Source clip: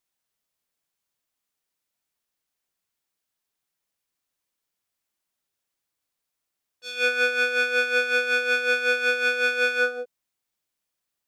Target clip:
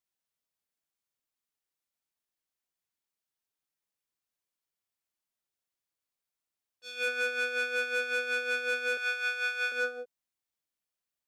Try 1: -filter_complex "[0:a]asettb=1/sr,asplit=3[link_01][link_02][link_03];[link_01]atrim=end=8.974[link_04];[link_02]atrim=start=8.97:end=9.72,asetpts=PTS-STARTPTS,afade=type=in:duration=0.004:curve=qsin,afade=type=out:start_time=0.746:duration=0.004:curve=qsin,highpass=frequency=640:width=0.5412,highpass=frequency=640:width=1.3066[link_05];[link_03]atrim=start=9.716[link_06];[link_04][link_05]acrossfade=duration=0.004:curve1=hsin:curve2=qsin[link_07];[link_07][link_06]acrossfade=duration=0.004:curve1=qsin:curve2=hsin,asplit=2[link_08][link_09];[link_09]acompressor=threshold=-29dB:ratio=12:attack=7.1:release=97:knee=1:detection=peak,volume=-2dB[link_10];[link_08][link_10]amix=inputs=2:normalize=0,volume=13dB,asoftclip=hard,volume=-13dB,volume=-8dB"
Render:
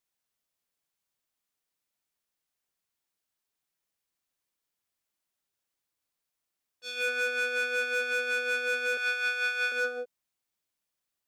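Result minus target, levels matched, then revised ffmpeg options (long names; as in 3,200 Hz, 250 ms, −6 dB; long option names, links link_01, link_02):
downward compressor: peak gain reduction +13 dB
-filter_complex "[0:a]asettb=1/sr,asplit=3[link_01][link_02][link_03];[link_01]atrim=end=8.974[link_04];[link_02]atrim=start=8.97:end=9.72,asetpts=PTS-STARTPTS,afade=type=in:duration=0.004:curve=qsin,afade=type=out:start_time=0.746:duration=0.004:curve=qsin,highpass=frequency=640:width=0.5412,highpass=frequency=640:width=1.3066[link_05];[link_03]atrim=start=9.716[link_06];[link_04][link_05]acrossfade=duration=0.004:curve1=hsin:curve2=qsin[link_07];[link_07][link_06]acrossfade=duration=0.004:curve1=qsin:curve2=hsin,volume=13dB,asoftclip=hard,volume=-13dB,volume=-8dB"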